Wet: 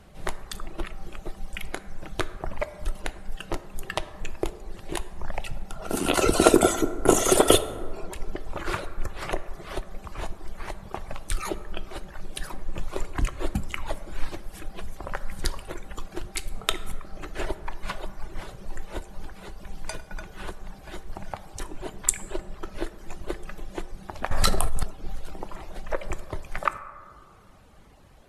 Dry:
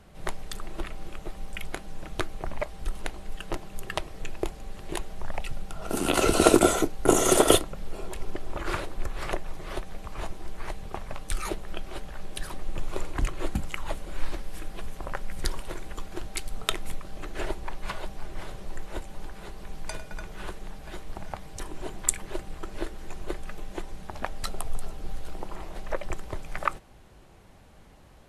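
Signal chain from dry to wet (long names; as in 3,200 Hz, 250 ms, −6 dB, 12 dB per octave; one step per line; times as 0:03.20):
reverb reduction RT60 0.99 s
dense smooth reverb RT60 2 s, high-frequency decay 0.35×, DRR 11.5 dB
0:24.31–0:24.83: envelope flattener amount 100%
level +2 dB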